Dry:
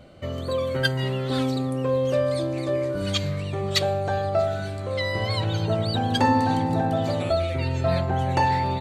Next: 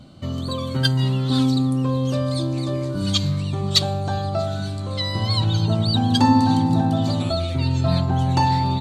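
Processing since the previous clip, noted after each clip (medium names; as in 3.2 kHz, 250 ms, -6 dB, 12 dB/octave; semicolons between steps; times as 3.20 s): graphic EQ 125/250/500/1000/2000/4000/8000 Hz +6/+8/-9/+5/-8/+8/+4 dB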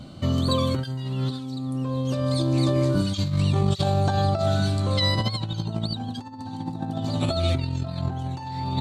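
compressor with a negative ratio -24 dBFS, ratio -0.5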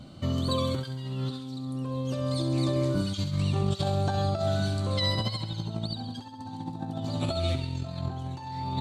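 thinning echo 67 ms, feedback 66%, high-pass 980 Hz, level -9 dB; trim -5 dB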